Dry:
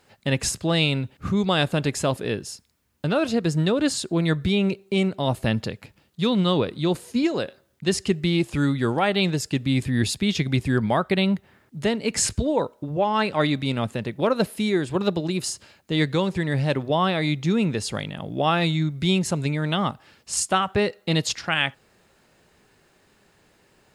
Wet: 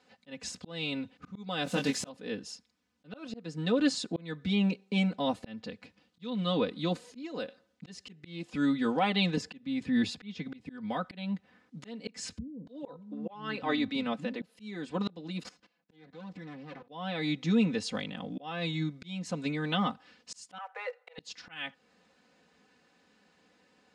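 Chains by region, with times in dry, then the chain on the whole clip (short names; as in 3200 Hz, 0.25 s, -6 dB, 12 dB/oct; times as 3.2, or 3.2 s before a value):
1.64–2.09 switching spikes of -24.5 dBFS + doubler 22 ms -5 dB
9.37–11.04 high shelf 4200 Hz -8.5 dB + three-band squash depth 70%
12.38–14.42 high shelf 6100 Hz -7.5 dB + bands offset in time lows, highs 0.29 s, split 210 Hz
15.43–16.89 minimum comb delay 5.9 ms + LPF 2600 Hz 6 dB/oct + level quantiser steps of 18 dB
20.58–21.18 block floating point 5-bit + Chebyshev high-pass 460 Hz, order 8 + resonant high shelf 2700 Hz -11.5 dB, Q 1.5
whole clip: Chebyshev band-pass 130–5300 Hz, order 2; comb 4 ms, depth 93%; auto swell 0.446 s; gain -7.5 dB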